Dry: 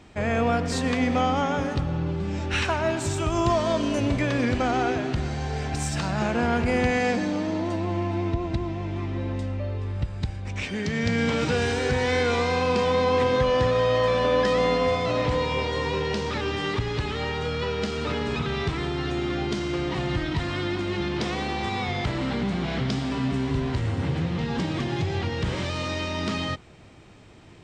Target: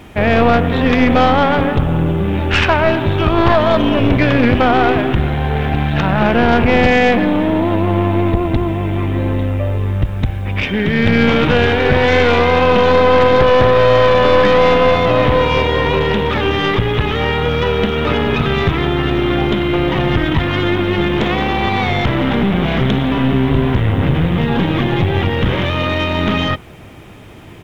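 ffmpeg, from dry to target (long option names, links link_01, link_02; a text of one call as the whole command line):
ffmpeg -i in.wav -af "aresample=8000,aresample=44100,aeval=exprs='0.335*(cos(1*acos(clip(val(0)/0.335,-1,1)))-cos(1*PI/2))+0.106*(cos(4*acos(clip(val(0)/0.335,-1,1)))-cos(4*PI/2))+0.0668*(cos(5*acos(clip(val(0)/0.335,-1,1)))-cos(5*PI/2))':channel_layout=same,acrusher=bits=8:mix=0:aa=0.5,volume=6.5dB" out.wav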